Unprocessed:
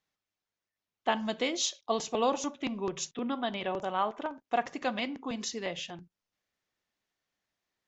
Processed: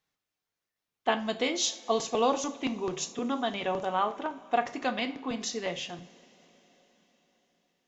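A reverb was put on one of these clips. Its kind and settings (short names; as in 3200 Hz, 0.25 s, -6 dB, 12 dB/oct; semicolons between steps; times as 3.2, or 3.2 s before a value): two-slope reverb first 0.36 s, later 4.8 s, from -22 dB, DRR 8 dB; gain +1.5 dB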